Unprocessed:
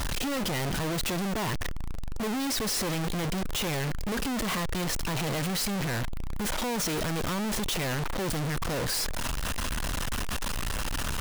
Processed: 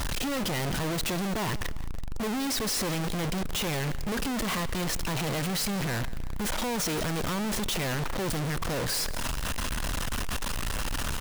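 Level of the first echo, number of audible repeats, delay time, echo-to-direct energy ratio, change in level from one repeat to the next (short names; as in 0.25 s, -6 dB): -18.5 dB, 2, 0.17 s, -17.5 dB, -6.0 dB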